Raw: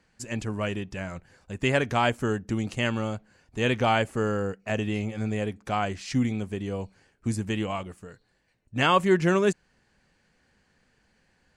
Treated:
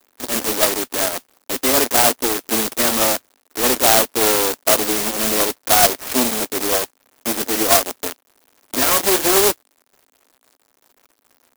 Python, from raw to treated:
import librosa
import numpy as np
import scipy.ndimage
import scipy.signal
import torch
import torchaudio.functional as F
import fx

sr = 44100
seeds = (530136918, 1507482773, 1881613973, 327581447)

y = fx.low_shelf(x, sr, hz=310.0, db=-4.5)
y = fx.transient(y, sr, attack_db=3, sustain_db=-5)
y = fx.fuzz(y, sr, gain_db=40.0, gate_db=-44.0)
y = fx.dynamic_eq(y, sr, hz=680.0, q=5.2, threshold_db=-30.0, ratio=4.0, max_db=5)
y = fx.cheby_harmonics(y, sr, harmonics=(4, 6), levels_db=(-8, -6), full_scale_db=-9.0)
y = (np.kron(scipy.signal.resample_poly(y, 1, 8), np.eye(8)[0]) * 8)[:len(y)]
y = fx.dmg_crackle(y, sr, seeds[0], per_s=180.0, level_db=-32.0)
y = scipy.signal.sosfilt(scipy.signal.cheby1(4, 1.0, [250.0, 4900.0], 'bandpass', fs=sr, output='sos'), y)
y = fx.clock_jitter(y, sr, seeds[1], jitter_ms=0.11)
y = y * librosa.db_to_amplitude(-3.0)